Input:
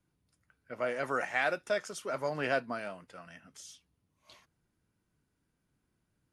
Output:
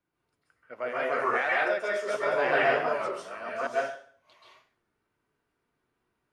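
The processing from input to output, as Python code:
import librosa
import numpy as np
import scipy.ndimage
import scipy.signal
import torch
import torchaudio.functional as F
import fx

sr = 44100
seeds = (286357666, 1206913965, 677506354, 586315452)

y = fx.reverse_delay(x, sr, ms=583, wet_db=-2.0, at=(1.35, 3.67))
y = fx.bass_treble(y, sr, bass_db=-13, treble_db=-12)
y = fx.rev_plate(y, sr, seeds[0], rt60_s=0.52, hf_ratio=0.9, predelay_ms=120, drr_db=-6.0)
y = fx.record_warp(y, sr, rpm=33.33, depth_cents=100.0)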